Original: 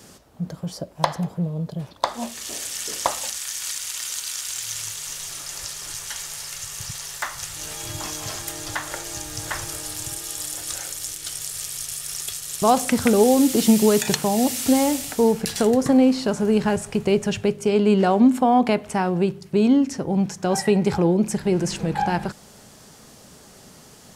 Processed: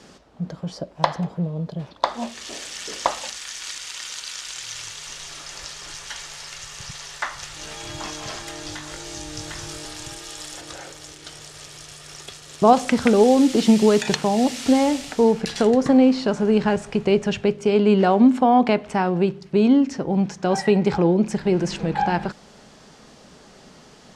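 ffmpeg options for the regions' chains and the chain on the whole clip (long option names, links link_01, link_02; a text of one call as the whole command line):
ffmpeg -i in.wav -filter_complex "[0:a]asettb=1/sr,asplit=3[link_01][link_02][link_03];[link_01]atrim=end=8.634[link_04];[link_02]atrim=start=8.63:end=9.85,asetpts=PTS-STARTPTS,afade=type=in:duration=0.004:curve=qsin,afade=type=out:start_time=1.216:duration=0.004:curve=qsin,asplit=2[link_05][link_06];[link_06]adelay=20,volume=-4dB[link_07];[link_05][link_07]amix=inputs=2:normalize=0,atrim=end_sample=53802,acrossover=split=330|3000[link_08][link_09][link_10];[link_09]acompressor=threshold=-39dB:ratio=6:attack=3.2:release=140:knee=2.83:detection=peak[link_11];[link_08][link_11][link_10]amix=inputs=3:normalize=0[link_12];[link_03]atrim=start=9.846[link_13];[link_04][link_12]acrossfade=duration=0.004:curve1=hsin:curve2=qsin[link_14];[link_14][link_13]acrossfade=duration=0.004:curve1=qsin:curve2=hsin,asettb=1/sr,asplit=3[link_15][link_16][link_17];[link_15]atrim=end=10.614[link_18];[link_16]atrim=start=10.61:end=12.73,asetpts=PTS-STARTPTS,afade=type=in:duration=0.004:curve=qsin,afade=type=out:start_time=2.116:duration=0.004:curve=qsin,highpass=frequency=110:poles=1,tiltshelf=frequency=1100:gain=5.5[link_19];[link_17]atrim=start=12.726[link_20];[link_18][link_19]acrossfade=duration=0.004:curve1=hsin:curve2=qsin[link_21];[link_21][link_20]acrossfade=duration=0.004:curve1=qsin:curve2=hsin,lowpass=4900,equalizer=frequency=100:width_type=o:width=0.77:gain=-8,volume=1.5dB" out.wav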